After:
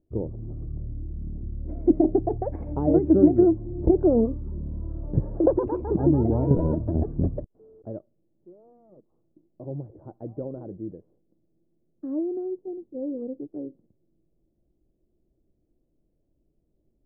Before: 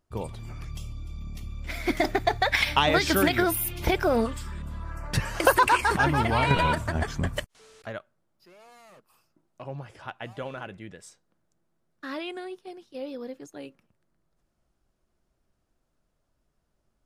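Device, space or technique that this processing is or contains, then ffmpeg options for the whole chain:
under water: -af "lowpass=frequency=540:width=0.5412,lowpass=frequency=540:width=1.3066,equalizer=frequency=320:width_type=o:width=0.44:gain=8,volume=3.5dB"

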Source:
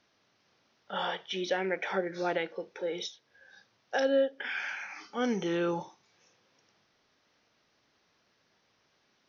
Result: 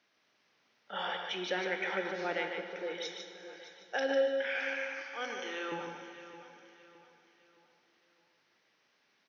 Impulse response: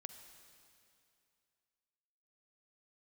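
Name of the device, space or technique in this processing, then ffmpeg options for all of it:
PA in a hall: -filter_complex "[0:a]asettb=1/sr,asplit=3[link_01][link_02][link_03];[link_01]atrim=end=5.024[link_04];[link_02]atrim=start=5.02:end=5.72,asetpts=PTS-STARTPTS,afade=type=in:duration=0.004:curve=qsin,afade=type=out:start_time=0.696:duration=0.004:curve=qsin,highpass=600[link_05];[link_03]atrim=start=5.716[link_06];[link_04][link_05]acrossfade=duration=0.004:curve1=hsin:curve2=qsin[link_07];[link_07][link_06]acrossfade=duration=0.004:curve1=qsin:curve2=hsin,highpass=180,equalizer=frequency=2200:width_type=o:width=1.2:gain=5.5,aecho=1:1:149:0.501,aecho=1:1:616|1232|1848|2464:0.2|0.0818|0.0335|0.0138[link_08];[1:a]atrim=start_sample=2205[link_09];[link_08][link_09]afir=irnorm=-1:irlink=0"

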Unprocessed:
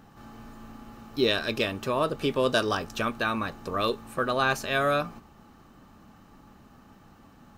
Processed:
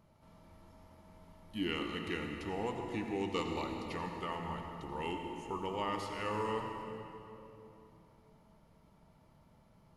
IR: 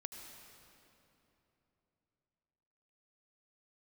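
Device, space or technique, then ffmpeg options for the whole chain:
slowed and reverbed: -filter_complex "[0:a]asetrate=33516,aresample=44100[link_01];[1:a]atrim=start_sample=2205[link_02];[link_01][link_02]afir=irnorm=-1:irlink=0,volume=-8dB"

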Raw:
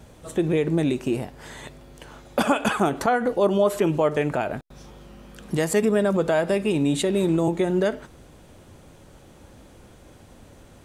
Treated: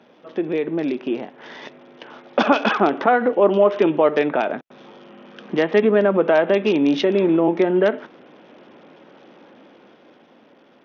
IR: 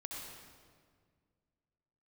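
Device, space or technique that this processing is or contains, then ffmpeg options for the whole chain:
Bluetooth headset: -af "highpass=frequency=220:width=0.5412,highpass=frequency=220:width=1.3066,dynaudnorm=framelen=220:gausssize=13:maxgain=6dB,aresample=8000,aresample=44100" -ar 48000 -c:a sbc -b:a 64k

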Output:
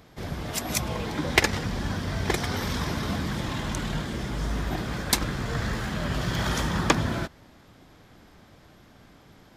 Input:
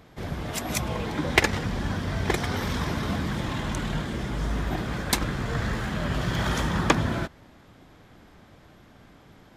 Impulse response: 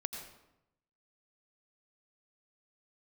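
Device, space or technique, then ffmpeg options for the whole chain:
presence and air boost: -af "equalizer=frequency=5000:width_type=o:width=0.77:gain=3.5,highshelf=frequency=9200:gain=5.5,volume=-1dB"

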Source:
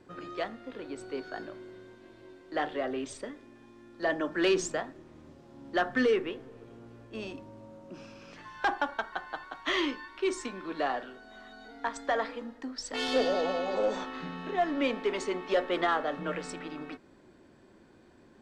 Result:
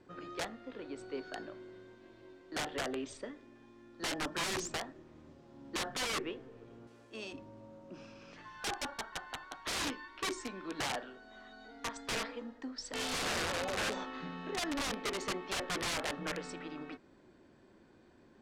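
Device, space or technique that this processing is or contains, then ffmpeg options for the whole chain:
overflowing digital effects unit: -filter_complex "[0:a]aeval=exprs='(mod(18.8*val(0)+1,2)-1)/18.8':channel_layout=same,lowpass=8200,asettb=1/sr,asplit=3[link_01][link_02][link_03];[link_01]atrim=end=6.874[link_04];[link_02]atrim=start=6.87:end=7.33,asetpts=PTS-STARTPTS,afade=type=in:duration=0.004:curve=qsin,afade=type=out:start_time=0.456:duration=0.004:curve=qsin,aemphasis=mode=production:type=bsi[link_05];[link_03]atrim=start=7.326[link_06];[link_04][link_05]acrossfade=duration=0.004:curve1=hsin:curve2=qsin[link_07];[link_07][link_06]acrossfade=duration=0.004:curve1=qsin:curve2=hsin,volume=-4dB"

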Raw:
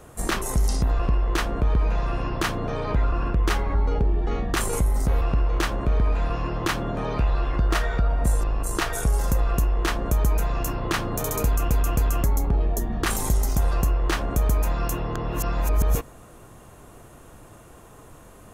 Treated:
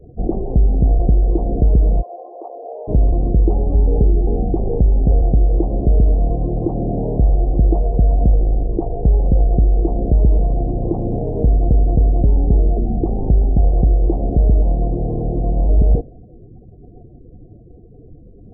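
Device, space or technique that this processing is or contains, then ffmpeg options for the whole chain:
under water: -filter_complex "[0:a]asplit=3[link_01][link_02][link_03];[link_01]afade=type=out:start_time=2.01:duration=0.02[link_04];[link_02]highpass=frequency=560:width=0.5412,highpass=frequency=560:width=1.3066,afade=type=in:start_time=2.01:duration=0.02,afade=type=out:start_time=2.87:duration=0.02[link_05];[link_03]afade=type=in:start_time=2.87:duration=0.02[link_06];[link_04][link_05][link_06]amix=inputs=3:normalize=0,lowpass=frequency=520:width=0.5412,lowpass=frequency=520:width=1.3066,equalizer=frequency=740:width_type=o:width=0.23:gain=12,afftdn=noise_reduction=25:noise_floor=-43,volume=8.5dB"

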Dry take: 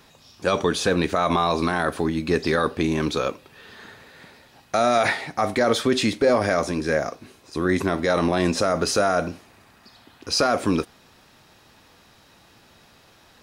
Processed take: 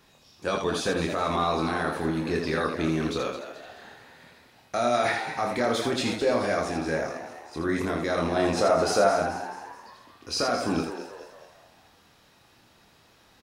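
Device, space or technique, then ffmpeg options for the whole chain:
slapback doubling: -filter_complex "[0:a]asettb=1/sr,asplit=3[link_01][link_02][link_03];[link_01]atrim=end=8.364[link_04];[link_02]atrim=start=8.36:end=9.08,asetpts=PTS-STARTPTS,afade=type=in:duration=0.004:curve=qsin,afade=type=out:start_time=0.716:duration=0.004:curve=qsin,equalizer=frequency=740:width=0.91:gain=7.5[link_05];[link_03]atrim=start=9.076[link_06];[link_04][link_05]acrossfade=duration=0.004:curve1=hsin:curve2=qsin[link_07];[link_07][link_06]acrossfade=duration=0.004:curve1=qsin:curve2=hsin,asplit=3[link_08][link_09][link_10];[link_09]adelay=25,volume=-4.5dB[link_11];[link_10]adelay=81,volume=-5dB[link_12];[link_08][link_11][link_12]amix=inputs=3:normalize=0,asplit=6[link_13][link_14][link_15][link_16][link_17][link_18];[link_14]adelay=215,afreqshift=97,volume=-11dB[link_19];[link_15]adelay=430,afreqshift=194,volume=-17.7dB[link_20];[link_16]adelay=645,afreqshift=291,volume=-24.5dB[link_21];[link_17]adelay=860,afreqshift=388,volume=-31.2dB[link_22];[link_18]adelay=1075,afreqshift=485,volume=-38dB[link_23];[link_13][link_19][link_20][link_21][link_22][link_23]amix=inputs=6:normalize=0,volume=-7.5dB"

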